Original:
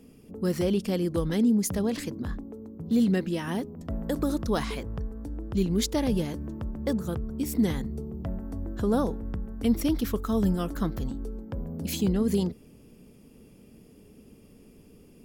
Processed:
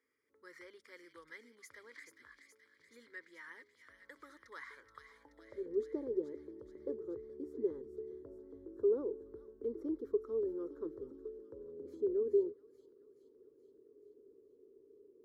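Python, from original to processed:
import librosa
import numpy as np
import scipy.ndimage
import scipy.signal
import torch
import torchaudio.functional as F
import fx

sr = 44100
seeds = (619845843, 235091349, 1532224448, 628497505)

y = fx.fixed_phaser(x, sr, hz=720.0, stages=6)
y = fx.filter_sweep_bandpass(y, sr, from_hz=2100.0, to_hz=400.0, start_s=4.61, end_s=5.8, q=6.3)
y = fx.echo_wet_highpass(y, sr, ms=427, feedback_pct=60, hz=2300.0, wet_db=-5.5)
y = F.gain(torch.from_numpy(y), 1.5).numpy()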